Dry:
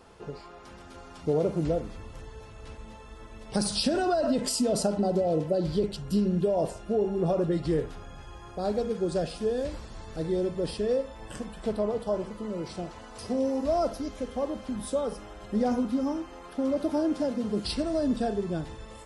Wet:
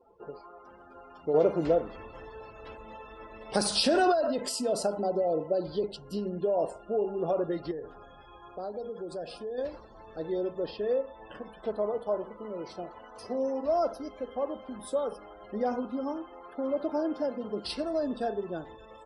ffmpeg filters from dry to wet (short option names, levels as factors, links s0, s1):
-filter_complex "[0:a]asettb=1/sr,asplit=3[s0][s1][s2];[s0]atrim=end=1.344[s3];[s1]atrim=start=1.34:end=4.12,asetpts=PTS-STARTPTS,afade=t=in:d=0.004:c=qsin,afade=t=out:st=2.776:d=0.004:c=qsin,acontrast=35[s4];[s2]atrim=start=4.116[s5];[s3][s4]acrossfade=d=0.004:c1=hsin:c2=qsin[s6];[s6][s5]acrossfade=d=0.004:c1=qsin:c2=hsin,asettb=1/sr,asplit=3[s7][s8][s9];[s7]atrim=end=7.714[s10];[s8]atrim=start=7.71:end=9.58,asetpts=PTS-STARTPTS,afade=t=in:d=0.004:c=qsin,afade=t=out:st=1.866:d=0.004:c=qsin,acompressor=threshold=0.0282:ratio=5:attack=3.2:release=140:knee=1:detection=peak[s11];[s9]atrim=start=9.576[s12];[s10][s11]acrossfade=d=0.004:c1=hsin:c2=qsin[s13];[s13][s12]acrossfade=d=0.004:c1=qsin:c2=hsin,asettb=1/sr,asplit=3[s14][s15][s16];[s14]atrim=end=10.624[s17];[s15]atrim=start=10.62:end=11.45,asetpts=PTS-STARTPTS,afade=t=in:d=0.004:c=qsin,afade=t=out:st=0.826:d=0.004:c=qsin,lowpass=4700[s18];[s16]atrim=start=11.446[s19];[s17][s18]acrossfade=d=0.004:c1=hsin:c2=qsin[s20];[s20][s19]acrossfade=d=0.004:c1=qsin:c2=hsin,afftdn=nr=29:nf=-48,bass=f=250:g=-15,treble=f=4000:g=-5"